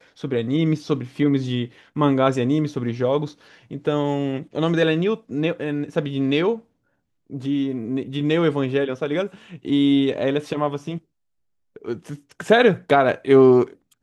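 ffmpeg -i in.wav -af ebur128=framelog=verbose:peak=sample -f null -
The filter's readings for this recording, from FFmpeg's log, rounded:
Integrated loudness:
  I:         -21.1 LUFS
  Threshold: -31.7 LUFS
Loudness range:
  LRA:         3.7 LU
  Threshold: -42.8 LUFS
  LRA low:   -24.5 LUFS
  LRA high:  -20.9 LUFS
Sample peak:
  Peak:       -3.2 dBFS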